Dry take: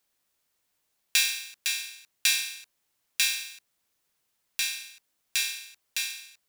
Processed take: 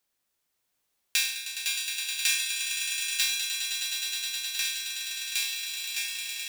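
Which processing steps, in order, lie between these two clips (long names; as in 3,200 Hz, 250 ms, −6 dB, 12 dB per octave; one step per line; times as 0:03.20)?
echo that builds up and dies away 104 ms, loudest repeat 8, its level −9.5 dB
level −3 dB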